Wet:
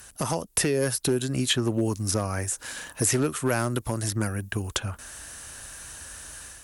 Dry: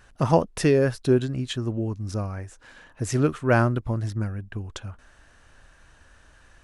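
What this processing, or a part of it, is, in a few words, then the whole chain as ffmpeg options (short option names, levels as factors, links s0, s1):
FM broadcast chain: -filter_complex "[0:a]highpass=45,dynaudnorm=f=460:g=3:m=2,acrossover=split=250|3200[s0][s1][s2];[s0]acompressor=threshold=0.0282:ratio=4[s3];[s1]acompressor=threshold=0.0631:ratio=4[s4];[s2]acompressor=threshold=0.00398:ratio=4[s5];[s3][s4][s5]amix=inputs=3:normalize=0,aemphasis=mode=production:type=50fm,alimiter=limit=0.158:level=0:latency=1:release=260,asoftclip=type=hard:threshold=0.119,lowpass=f=15000:w=0.5412,lowpass=f=15000:w=1.3066,aemphasis=mode=production:type=50fm,volume=1.33"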